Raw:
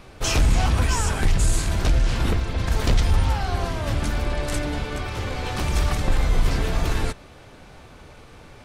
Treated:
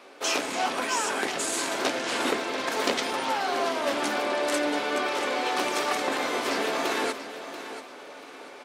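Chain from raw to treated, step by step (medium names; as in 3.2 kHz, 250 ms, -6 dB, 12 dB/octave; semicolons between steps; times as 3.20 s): high-pass 320 Hz 24 dB/octave; treble shelf 6.6 kHz -5 dB; gain riding 0.5 s; feedback delay 686 ms, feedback 28%, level -12 dB; on a send at -11.5 dB: reverberation RT60 0.40 s, pre-delay 3 ms; on the sum: trim +2.5 dB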